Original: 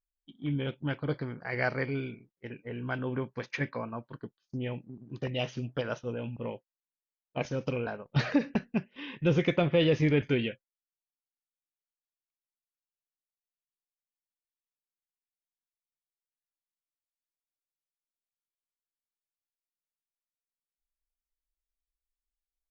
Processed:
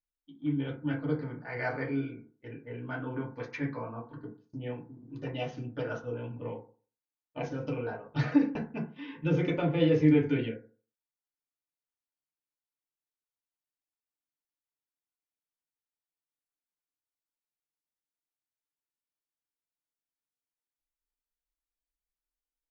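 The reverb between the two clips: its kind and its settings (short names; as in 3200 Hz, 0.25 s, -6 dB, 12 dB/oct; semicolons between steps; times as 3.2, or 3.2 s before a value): FDN reverb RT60 0.4 s, low-frequency decay 1×, high-frequency decay 0.3×, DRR -4 dB; gain -8.5 dB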